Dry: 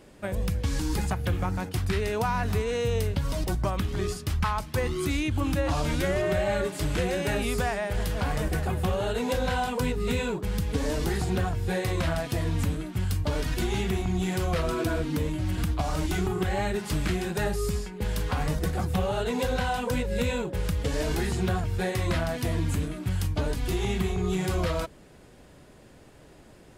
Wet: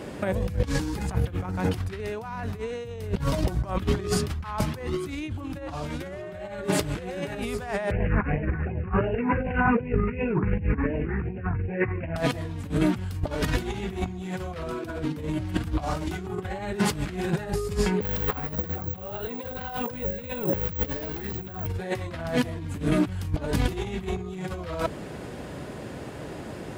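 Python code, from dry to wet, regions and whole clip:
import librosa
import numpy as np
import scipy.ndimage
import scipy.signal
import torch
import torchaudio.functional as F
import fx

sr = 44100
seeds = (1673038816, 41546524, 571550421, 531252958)

y = fx.chain(x, sr, fx.steep_lowpass(hz=2700.0, slope=96),
    fx.quant_float(bits=8),
    fx.phaser_stages(stages=4, low_hz=550.0, high_hz=1300.0, hz=2.7, feedback_pct=0), at=(7.91, 12.16))
y = fx.chain(y, sr, fx.lowpass(hz=6900.0, slope=12),
    fx.resample_bad(factor=2, down='filtered', up='zero_stuff'), at=(18.01, 21.67))
y = scipy.signal.sosfilt(scipy.signal.butter(2, 76.0, 'highpass', fs=sr, output='sos'), y)
y = fx.high_shelf(y, sr, hz=3400.0, db=-7.5)
y = fx.over_compress(y, sr, threshold_db=-35.0, ratio=-0.5)
y = y * 10.0 ** (8.5 / 20.0)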